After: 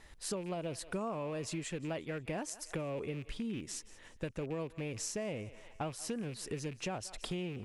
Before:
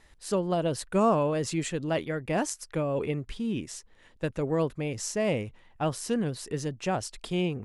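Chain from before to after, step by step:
loose part that buzzes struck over −36 dBFS, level −33 dBFS
feedback echo with a high-pass in the loop 178 ms, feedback 42%, high-pass 580 Hz, level −21 dB
downward compressor 6 to 1, threshold −38 dBFS, peak gain reduction 17.5 dB
level +1.5 dB

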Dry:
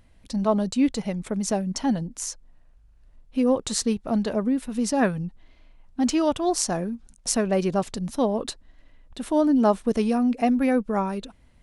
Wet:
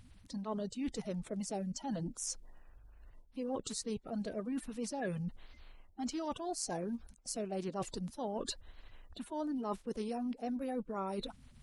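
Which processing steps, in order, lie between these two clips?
spectral magnitudes quantised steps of 30 dB
reversed playback
downward compressor 6 to 1, threshold −35 dBFS, peak gain reduction 19 dB
reversed playback
level −1.5 dB

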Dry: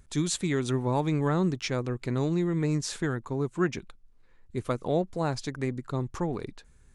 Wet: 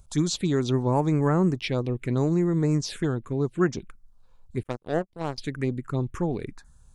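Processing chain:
phaser swept by the level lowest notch 300 Hz, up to 3,700 Hz, full sweep at −22 dBFS
0:04.63–0:05.38: power curve on the samples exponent 2
level +4 dB

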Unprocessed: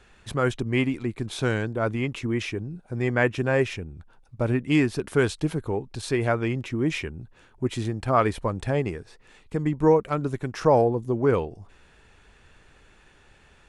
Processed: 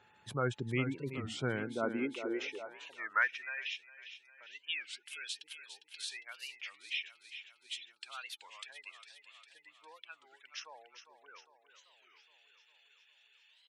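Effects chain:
low-shelf EQ 270 Hz −10.5 dB
gate on every frequency bin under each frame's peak −20 dB strong
steady tone 860 Hz −60 dBFS
0:02.98–0:03.58: notch comb filter 430 Hz
repeating echo 404 ms, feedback 60%, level −10.5 dB
high-pass filter sweep 120 Hz → 3,000 Hz, 0:01.44–0:03.71
wow of a warped record 33 1/3 rpm, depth 250 cents
level −8 dB

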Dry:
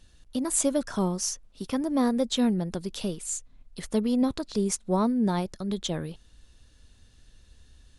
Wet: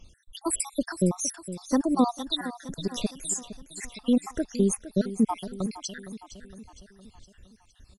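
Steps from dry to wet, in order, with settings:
time-frequency cells dropped at random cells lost 70%
on a send: repeating echo 462 ms, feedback 53%, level −13.5 dB
on the sum: level +5 dB

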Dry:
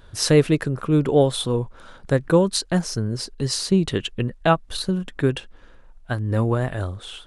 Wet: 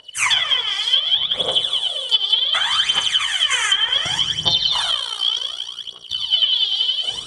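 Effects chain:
band-splitting scrambler in four parts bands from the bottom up 3412
octave-band graphic EQ 250/2,000/4,000/8,000 Hz −6/+5/−4/+7 dB
transient designer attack 0 dB, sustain −6 dB
convolution reverb RT60 2.5 s, pre-delay 31 ms, DRR −1.5 dB
phase shifter 0.67 Hz, delay 2.6 ms, feedback 75%
high-pass filter 67 Hz 12 dB per octave
0:04.91–0:06.19: amplitude modulation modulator 59 Hz, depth 60%
treble cut that deepens with the level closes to 2,100 Hz, closed at −7 dBFS
0:02.95–0:04.19: multiband upward and downward compressor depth 70%
level −1.5 dB

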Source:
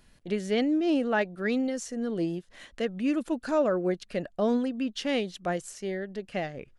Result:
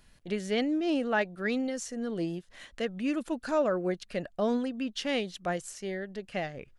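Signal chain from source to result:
parametric band 310 Hz −3.5 dB 2 octaves

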